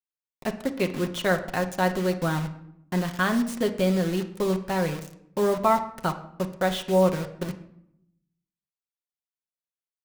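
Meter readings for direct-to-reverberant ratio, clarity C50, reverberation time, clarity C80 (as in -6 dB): 4.5 dB, 12.0 dB, 0.75 s, 15.0 dB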